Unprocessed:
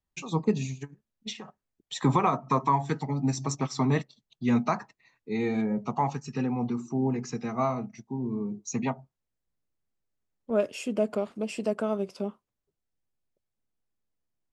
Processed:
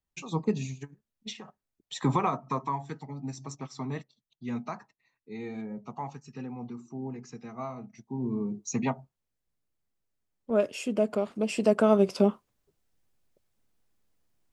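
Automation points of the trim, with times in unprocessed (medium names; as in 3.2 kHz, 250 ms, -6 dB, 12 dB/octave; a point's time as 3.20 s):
2.20 s -2.5 dB
2.97 s -10 dB
7.73 s -10 dB
8.25 s +0.5 dB
11.16 s +0.5 dB
12.14 s +10 dB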